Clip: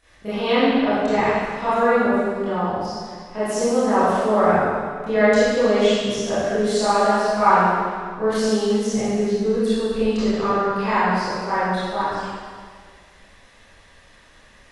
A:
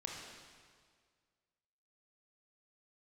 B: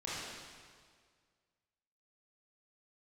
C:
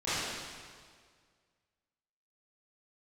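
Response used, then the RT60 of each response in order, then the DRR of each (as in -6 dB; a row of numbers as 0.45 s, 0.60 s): C; 1.8 s, 1.8 s, 1.9 s; -1.5 dB, -9.0 dB, -16.0 dB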